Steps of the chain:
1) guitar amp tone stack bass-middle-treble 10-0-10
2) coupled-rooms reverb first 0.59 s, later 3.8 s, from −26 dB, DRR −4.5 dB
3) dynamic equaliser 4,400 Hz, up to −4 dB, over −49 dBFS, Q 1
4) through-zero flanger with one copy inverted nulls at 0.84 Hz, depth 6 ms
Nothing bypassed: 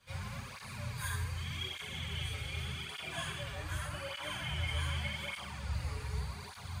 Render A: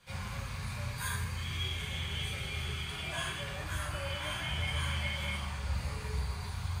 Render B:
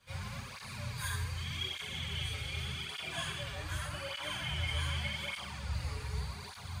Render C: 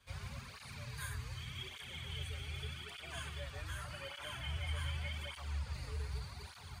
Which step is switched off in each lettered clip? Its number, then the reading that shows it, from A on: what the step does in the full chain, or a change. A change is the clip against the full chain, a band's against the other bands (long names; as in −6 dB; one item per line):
4, change in momentary loudness spread −2 LU
3, 4 kHz band +2.5 dB
2, 250 Hz band −2.0 dB